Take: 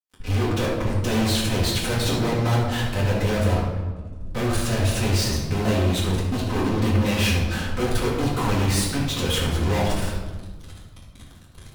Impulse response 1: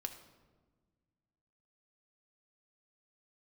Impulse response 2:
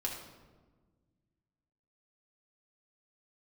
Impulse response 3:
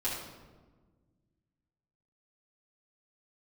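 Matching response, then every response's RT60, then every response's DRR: 3; 1.4, 1.4, 1.4 seconds; 6.0, −2.0, −10.0 decibels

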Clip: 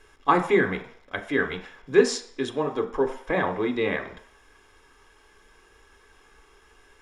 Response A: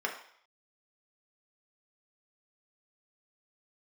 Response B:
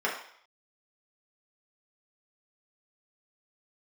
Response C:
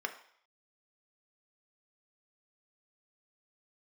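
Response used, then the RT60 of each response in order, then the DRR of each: C; 0.60, 0.60, 0.60 seconds; −0.5, −5.0, 5.0 decibels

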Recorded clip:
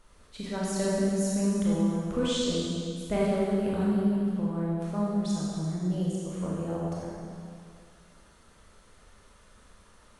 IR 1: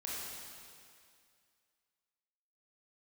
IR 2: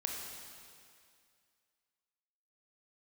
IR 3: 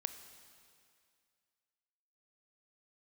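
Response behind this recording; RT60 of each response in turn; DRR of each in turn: 1; 2.2, 2.2, 2.2 seconds; −6.5, 0.0, 9.5 decibels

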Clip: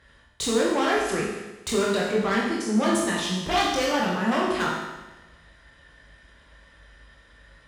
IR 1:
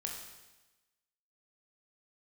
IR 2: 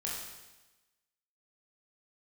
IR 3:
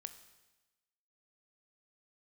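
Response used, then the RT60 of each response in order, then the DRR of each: 2; 1.1, 1.1, 1.1 seconds; 0.0, −5.0, 10.0 decibels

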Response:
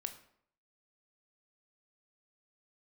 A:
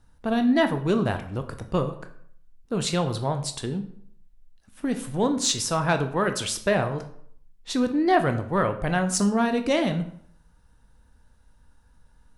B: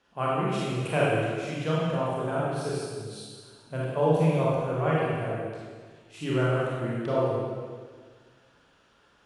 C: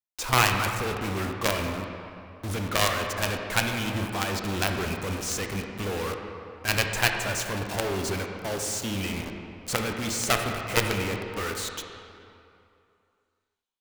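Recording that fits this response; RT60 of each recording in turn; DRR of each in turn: A; 0.65, 1.7, 2.7 seconds; 7.0, −7.0, 3.0 decibels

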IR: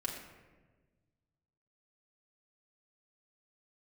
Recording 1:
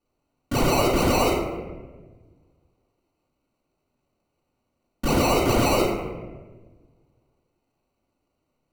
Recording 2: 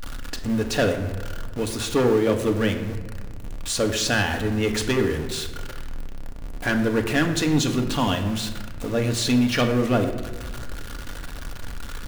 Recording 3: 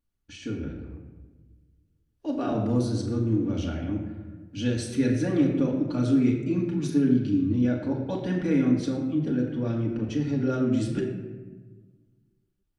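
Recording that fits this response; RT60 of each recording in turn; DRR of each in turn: 3; 1.3, 1.4, 1.4 seconds; −10.5, 4.5, −2.5 decibels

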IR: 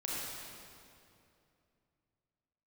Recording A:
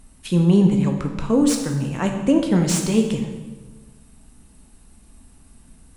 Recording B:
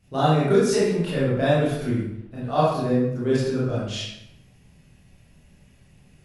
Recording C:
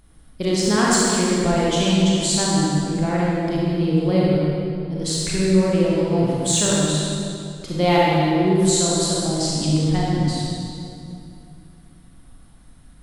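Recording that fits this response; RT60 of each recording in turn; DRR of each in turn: C; 1.3, 0.85, 2.6 seconds; 3.0, −9.5, −6.0 decibels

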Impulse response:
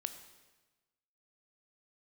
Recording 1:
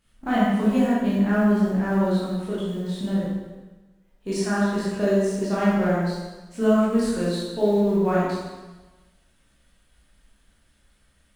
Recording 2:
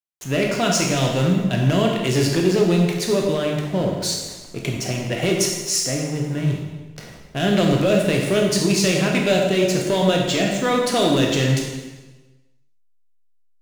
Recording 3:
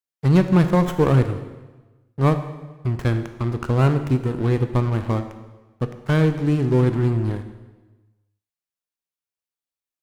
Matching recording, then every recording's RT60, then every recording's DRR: 3; 1.2, 1.2, 1.2 seconds; −9.0, 0.0, 8.5 decibels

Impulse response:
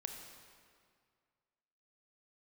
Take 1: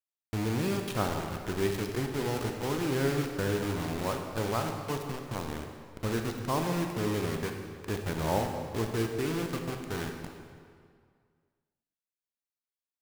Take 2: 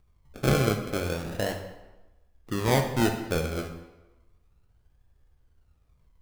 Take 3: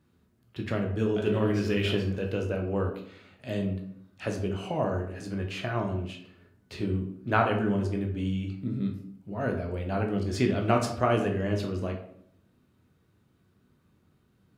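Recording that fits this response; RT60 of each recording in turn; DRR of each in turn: 1; 2.1, 1.1, 0.65 seconds; 3.5, 4.5, 2.0 decibels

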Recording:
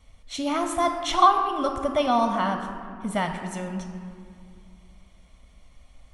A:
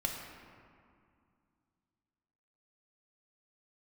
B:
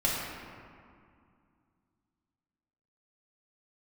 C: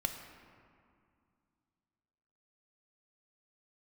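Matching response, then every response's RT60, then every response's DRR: C; 2.3, 2.3, 2.3 seconds; 0.0, −6.5, 4.5 decibels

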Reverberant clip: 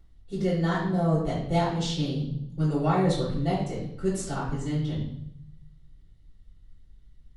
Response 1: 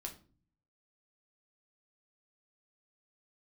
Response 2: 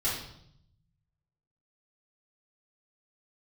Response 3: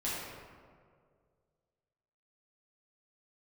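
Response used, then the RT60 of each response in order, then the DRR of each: 2; 0.40, 0.70, 2.0 seconds; 1.0, −9.5, −9.5 decibels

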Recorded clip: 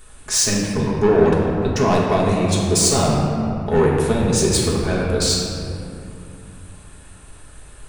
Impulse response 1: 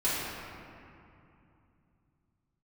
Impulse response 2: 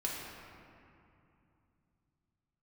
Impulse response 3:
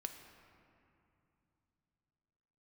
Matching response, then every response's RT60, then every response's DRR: 2; 2.7, 2.7, 2.8 seconds; −12.5, −4.5, 5.5 decibels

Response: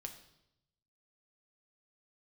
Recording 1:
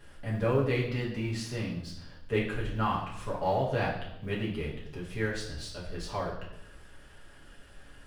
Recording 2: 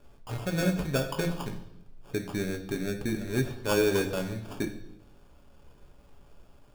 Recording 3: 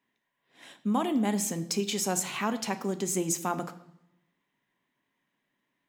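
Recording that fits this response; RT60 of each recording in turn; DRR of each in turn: 2; 0.80, 0.80, 0.80 seconds; −5.5, 4.0, 9.0 decibels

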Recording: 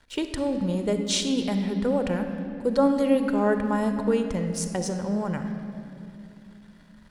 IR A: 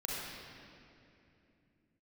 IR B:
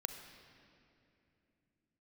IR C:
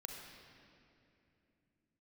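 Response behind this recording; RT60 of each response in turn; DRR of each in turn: B; 2.8, 2.8, 2.8 seconds; −5.5, 6.5, 1.0 decibels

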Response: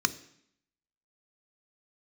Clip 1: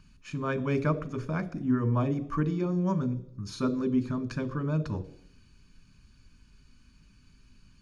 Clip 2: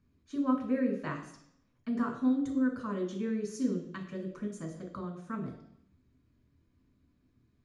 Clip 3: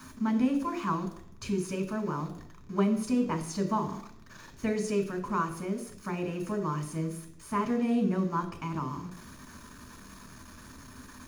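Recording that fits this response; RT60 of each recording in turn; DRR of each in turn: 1; 0.70, 0.70, 0.70 seconds; 11.5, −0.5, 3.5 decibels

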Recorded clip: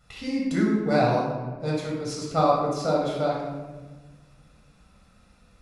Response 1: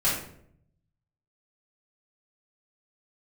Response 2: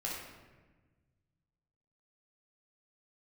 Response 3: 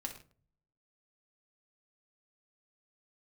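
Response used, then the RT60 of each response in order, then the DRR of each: 2; 0.65 s, 1.3 s, non-exponential decay; −10.0, −4.5, 2.0 decibels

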